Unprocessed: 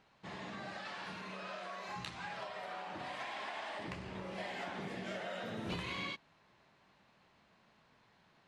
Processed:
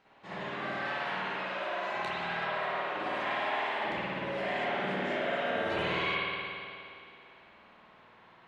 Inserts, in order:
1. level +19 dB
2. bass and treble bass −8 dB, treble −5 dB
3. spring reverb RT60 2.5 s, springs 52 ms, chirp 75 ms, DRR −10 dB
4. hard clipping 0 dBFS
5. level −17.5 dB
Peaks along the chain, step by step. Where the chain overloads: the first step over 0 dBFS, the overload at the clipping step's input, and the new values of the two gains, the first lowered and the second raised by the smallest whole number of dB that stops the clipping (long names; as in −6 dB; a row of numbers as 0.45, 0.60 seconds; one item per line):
−9.0, −10.5, −2.5, −2.5, −20.0 dBFS
no step passes full scale